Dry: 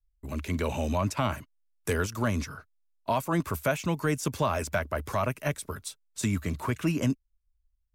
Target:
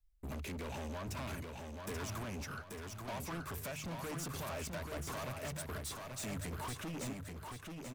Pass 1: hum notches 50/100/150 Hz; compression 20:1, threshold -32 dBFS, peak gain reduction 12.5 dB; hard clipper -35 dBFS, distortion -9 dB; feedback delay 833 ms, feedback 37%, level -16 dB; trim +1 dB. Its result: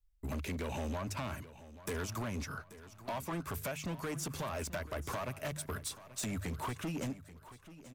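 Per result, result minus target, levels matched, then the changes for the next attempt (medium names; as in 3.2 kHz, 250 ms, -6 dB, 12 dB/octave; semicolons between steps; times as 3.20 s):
echo-to-direct -11.5 dB; hard clipper: distortion -5 dB
change: feedback delay 833 ms, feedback 37%, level -4.5 dB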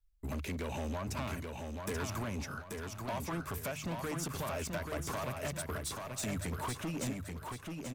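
hard clipper: distortion -5 dB
change: hard clipper -41.5 dBFS, distortion -5 dB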